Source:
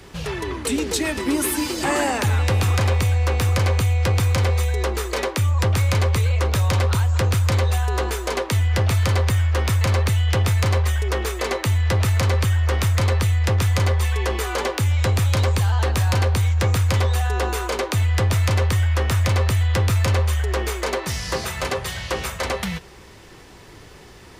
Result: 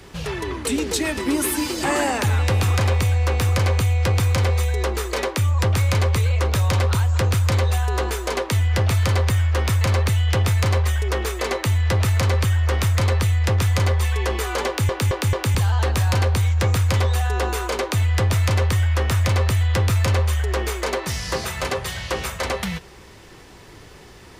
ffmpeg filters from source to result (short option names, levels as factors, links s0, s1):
-filter_complex "[0:a]asplit=5[s0][s1][s2][s3][s4];[s0]atrim=end=14.892[s5];[s1]atrim=start=14.668:end=14.892[s6];[s2]atrim=start=14.668:end=14.892[s7];[s3]atrim=start=14.668:end=14.892[s8];[s4]atrim=start=15.548[s9];[s5][s6]acrossfade=d=0.004:c1=hsin:c2=hsin[s10];[s10][s7]acrossfade=d=0.004:c1=hsin:c2=hsin[s11];[s11][s8]acrossfade=d=0.004:c1=hsin:c2=hsin[s12];[s12][s9]acrossfade=d=0.004:c1=hsin:c2=hsin"